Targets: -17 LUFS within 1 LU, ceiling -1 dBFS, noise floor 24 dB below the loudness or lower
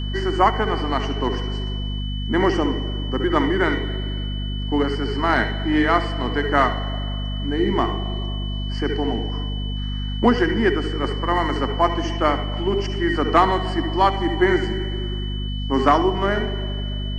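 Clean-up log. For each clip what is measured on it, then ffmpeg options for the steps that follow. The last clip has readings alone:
hum 50 Hz; harmonics up to 250 Hz; hum level -23 dBFS; steady tone 3000 Hz; tone level -34 dBFS; loudness -22.0 LUFS; peak -3.0 dBFS; loudness target -17.0 LUFS
-> -af "bandreject=f=50:t=h:w=6,bandreject=f=100:t=h:w=6,bandreject=f=150:t=h:w=6,bandreject=f=200:t=h:w=6,bandreject=f=250:t=h:w=6"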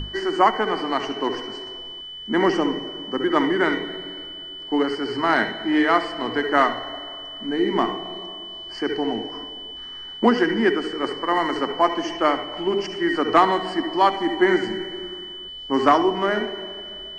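hum none; steady tone 3000 Hz; tone level -34 dBFS
-> -af "bandreject=f=3k:w=30"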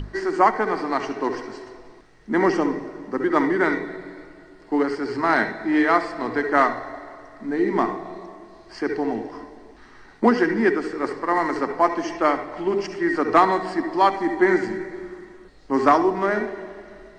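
steady tone none; loudness -22.0 LUFS; peak -3.5 dBFS; loudness target -17.0 LUFS
-> -af "volume=5dB,alimiter=limit=-1dB:level=0:latency=1"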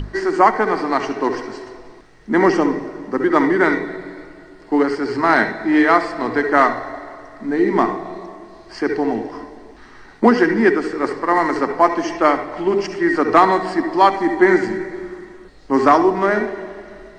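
loudness -17.5 LUFS; peak -1.0 dBFS; noise floor -43 dBFS

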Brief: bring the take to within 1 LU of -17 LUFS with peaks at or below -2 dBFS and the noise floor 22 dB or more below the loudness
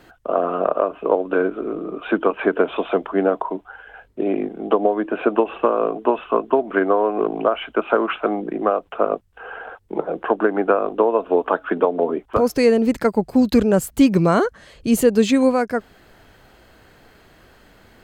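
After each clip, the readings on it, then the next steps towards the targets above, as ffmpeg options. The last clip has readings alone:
loudness -20.0 LUFS; peak -4.0 dBFS; loudness target -17.0 LUFS
-> -af "volume=3dB,alimiter=limit=-2dB:level=0:latency=1"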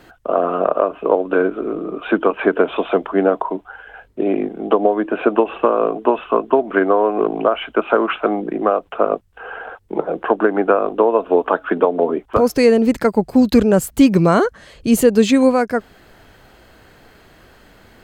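loudness -17.0 LUFS; peak -2.0 dBFS; noise floor -49 dBFS

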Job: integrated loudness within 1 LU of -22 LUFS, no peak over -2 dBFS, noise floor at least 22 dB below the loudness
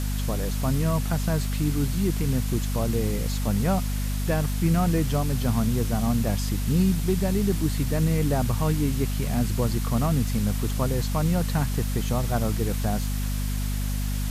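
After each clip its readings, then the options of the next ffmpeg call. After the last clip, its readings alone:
hum 50 Hz; harmonics up to 250 Hz; hum level -24 dBFS; noise floor -27 dBFS; noise floor target -48 dBFS; loudness -25.5 LUFS; peak -11.0 dBFS; loudness target -22.0 LUFS
-> -af "bandreject=f=50:t=h:w=6,bandreject=f=100:t=h:w=6,bandreject=f=150:t=h:w=6,bandreject=f=200:t=h:w=6,bandreject=f=250:t=h:w=6"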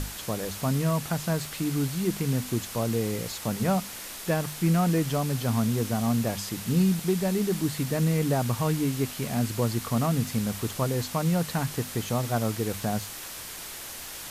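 hum none; noise floor -39 dBFS; noise floor target -50 dBFS
-> -af "afftdn=nr=11:nf=-39"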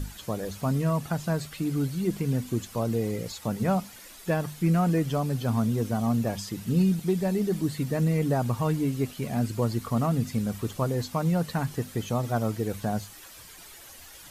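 noise floor -47 dBFS; noise floor target -50 dBFS
-> -af "afftdn=nr=6:nf=-47"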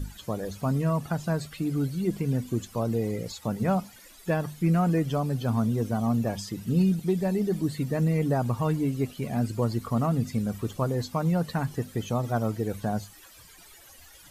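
noise floor -51 dBFS; loudness -28.0 LUFS; peak -14.0 dBFS; loudness target -22.0 LUFS
-> -af "volume=6dB"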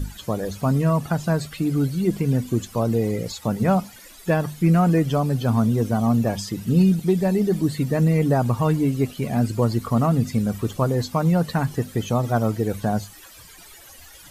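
loudness -22.0 LUFS; peak -8.0 dBFS; noise floor -45 dBFS

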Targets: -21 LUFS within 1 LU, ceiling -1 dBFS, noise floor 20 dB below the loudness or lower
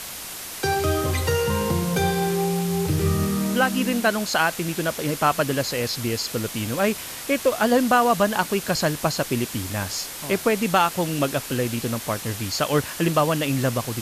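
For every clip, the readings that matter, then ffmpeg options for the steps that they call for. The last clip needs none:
noise floor -35 dBFS; noise floor target -43 dBFS; loudness -23.0 LUFS; peak -6.5 dBFS; loudness target -21.0 LUFS
-> -af "afftdn=nr=8:nf=-35"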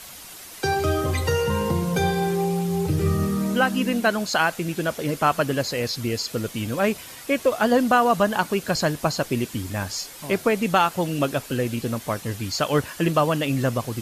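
noise floor -41 dBFS; noise floor target -44 dBFS
-> -af "afftdn=nr=6:nf=-41"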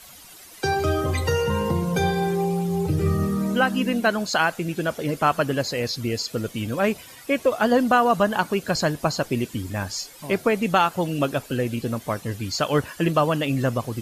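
noise floor -45 dBFS; loudness -23.5 LUFS; peak -7.0 dBFS; loudness target -21.0 LUFS
-> -af "volume=2.5dB"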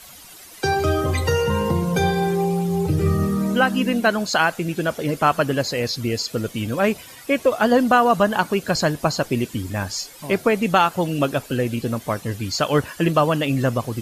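loudness -21.0 LUFS; peak -4.5 dBFS; noise floor -43 dBFS

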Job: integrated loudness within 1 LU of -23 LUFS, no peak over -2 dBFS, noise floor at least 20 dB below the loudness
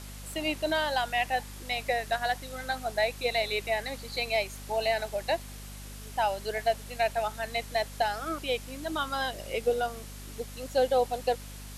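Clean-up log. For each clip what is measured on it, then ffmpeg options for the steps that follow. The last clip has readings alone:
hum 50 Hz; harmonics up to 250 Hz; hum level -42 dBFS; noise floor -43 dBFS; noise floor target -51 dBFS; loudness -30.5 LUFS; peak -15.5 dBFS; loudness target -23.0 LUFS
-> -af "bandreject=f=50:t=h:w=4,bandreject=f=100:t=h:w=4,bandreject=f=150:t=h:w=4,bandreject=f=200:t=h:w=4,bandreject=f=250:t=h:w=4"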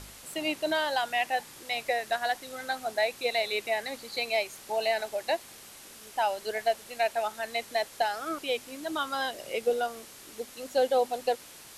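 hum none; noise floor -49 dBFS; noise floor target -51 dBFS
-> -af "afftdn=nr=6:nf=-49"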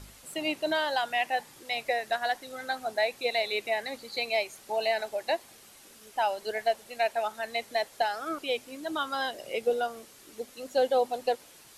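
noise floor -54 dBFS; loudness -30.5 LUFS; peak -15.5 dBFS; loudness target -23.0 LUFS
-> -af "volume=7.5dB"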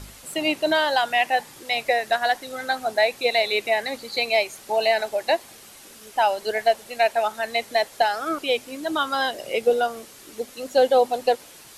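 loudness -23.0 LUFS; peak -8.0 dBFS; noise floor -46 dBFS

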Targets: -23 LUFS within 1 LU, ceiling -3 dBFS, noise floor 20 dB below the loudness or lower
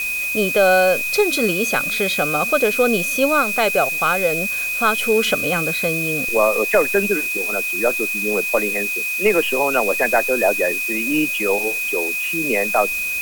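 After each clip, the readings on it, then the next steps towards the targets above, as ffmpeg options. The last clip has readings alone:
steady tone 2500 Hz; tone level -21 dBFS; noise floor -23 dBFS; noise floor target -38 dBFS; loudness -17.5 LUFS; peak -4.0 dBFS; loudness target -23.0 LUFS
-> -af "bandreject=f=2.5k:w=30"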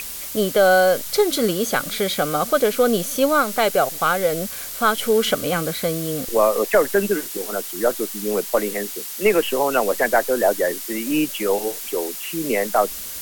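steady tone none; noise floor -32 dBFS; noise floor target -41 dBFS
-> -af "afftdn=nr=9:nf=-32"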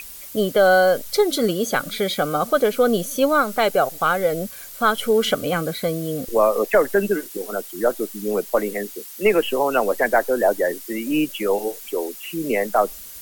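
noise floor -38 dBFS; noise floor target -41 dBFS
-> -af "afftdn=nr=6:nf=-38"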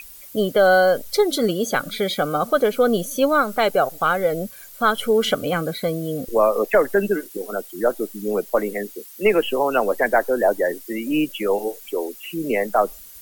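noise floor -42 dBFS; loudness -21.0 LUFS; peak -5.5 dBFS; loudness target -23.0 LUFS
-> -af "volume=-2dB"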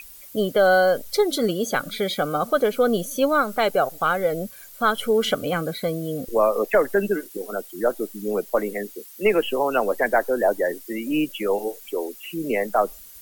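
loudness -23.0 LUFS; peak -7.5 dBFS; noise floor -44 dBFS

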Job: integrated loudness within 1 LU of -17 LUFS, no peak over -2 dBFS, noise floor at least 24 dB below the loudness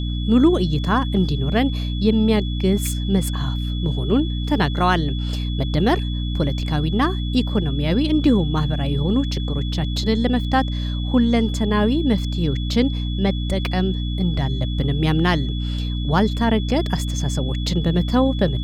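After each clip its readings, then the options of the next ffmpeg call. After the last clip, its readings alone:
hum 60 Hz; harmonics up to 300 Hz; hum level -21 dBFS; steady tone 3400 Hz; tone level -34 dBFS; loudness -20.5 LUFS; peak -4.5 dBFS; loudness target -17.0 LUFS
-> -af "bandreject=f=60:t=h:w=6,bandreject=f=120:t=h:w=6,bandreject=f=180:t=h:w=6,bandreject=f=240:t=h:w=6,bandreject=f=300:t=h:w=6"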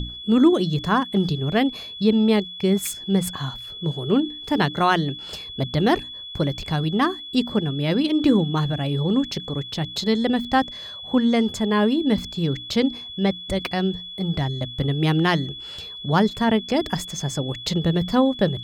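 hum none; steady tone 3400 Hz; tone level -34 dBFS
-> -af "bandreject=f=3.4k:w=30"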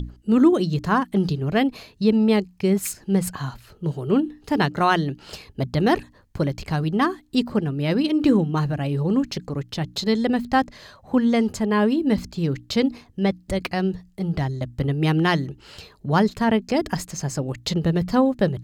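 steady tone none; loudness -22.5 LUFS; peak -6.5 dBFS; loudness target -17.0 LUFS
-> -af "volume=5.5dB,alimiter=limit=-2dB:level=0:latency=1"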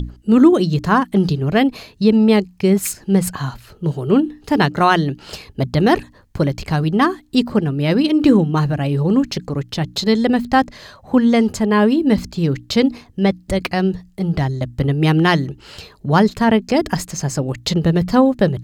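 loudness -17.0 LUFS; peak -2.0 dBFS; noise floor -48 dBFS

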